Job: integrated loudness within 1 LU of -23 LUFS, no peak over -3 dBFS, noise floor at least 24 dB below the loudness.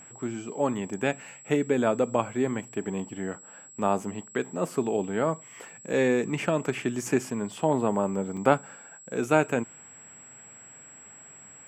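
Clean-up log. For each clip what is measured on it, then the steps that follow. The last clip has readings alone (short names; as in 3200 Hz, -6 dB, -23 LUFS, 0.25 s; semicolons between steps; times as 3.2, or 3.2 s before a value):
dropouts 1; longest dropout 4.7 ms; steady tone 7700 Hz; tone level -47 dBFS; loudness -28.0 LUFS; peak -5.5 dBFS; loudness target -23.0 LUFS
-> interpolate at 8.37, 4.7 ms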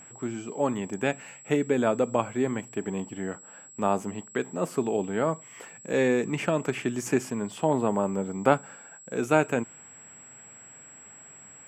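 dropouts 0; steady tone 7700 Hz; tone level -47 dBFS
-> notch 7700 Hz, Q 30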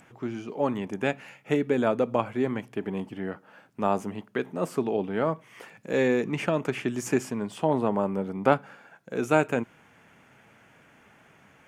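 steady tone none; loudness -28.0 LUFS; peak -5.0 dBFS; loudness target -23.0 LUFS
-> gain +5 dB; limiter -3 dBFS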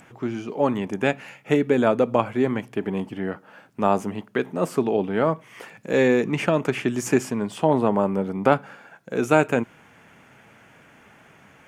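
loudness -23.5 LUFS; peak -3.0 dBFS; noise floor -53 dBFS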